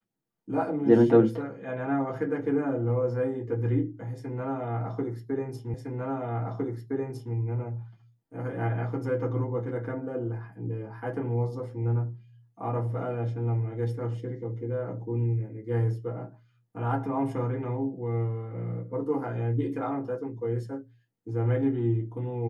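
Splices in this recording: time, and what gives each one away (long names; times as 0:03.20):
0:05.74: the same again, the last 1.61 s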